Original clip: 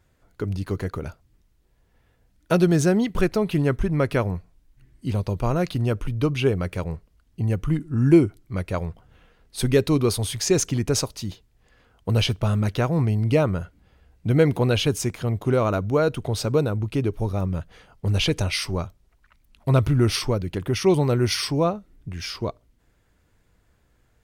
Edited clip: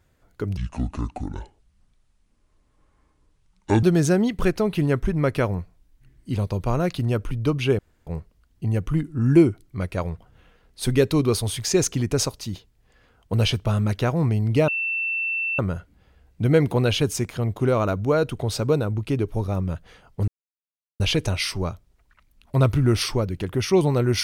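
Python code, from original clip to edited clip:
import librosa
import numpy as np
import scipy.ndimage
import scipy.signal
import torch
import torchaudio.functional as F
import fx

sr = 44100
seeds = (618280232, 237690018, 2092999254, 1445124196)

y = fx.edit(x, sr, fx.speed_span(start_s=0.57, length_s=2.02, speed=0.62),
    fx.room_tone_fill(start_s=6.55, length_s=0.28),
    fx.insert_tone(at_s=13.44, length_s=0.91, hz=2680.0, db=-22.5),
    fx.insert_silence(at_s=18.13, length_s=0.72), tone=tone)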